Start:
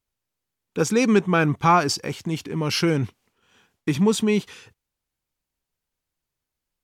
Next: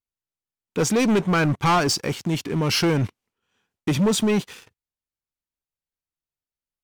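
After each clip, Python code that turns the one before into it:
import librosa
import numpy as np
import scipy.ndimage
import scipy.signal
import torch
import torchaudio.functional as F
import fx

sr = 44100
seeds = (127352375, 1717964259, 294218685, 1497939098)

y = fx.leveller(x, sr, passes=3)
y = y * librosa.db_to_amplitude(-7.0)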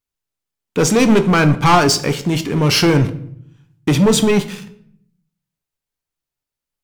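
y = fx.room_shoebox(x, sr, seeds[0], volume_m3=120.0, walls='mixed', distance_m=0.31)
y = y * librosa.db_to_amplitude(6.5)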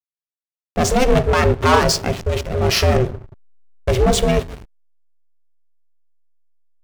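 y = x * np.sin(2.0 * np.pi * 250.0 * np.arange(len(x)) / sr)
y = fx.backlash(y, sr, play_db=-23.0)
y = y * librosa.db_to_amplitude(1.0)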